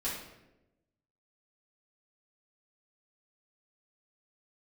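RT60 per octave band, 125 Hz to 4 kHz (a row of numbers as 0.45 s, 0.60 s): 1.3 s, 1.2 s, 1.1 s, 0.80 s, 0.80 s, 0.65 s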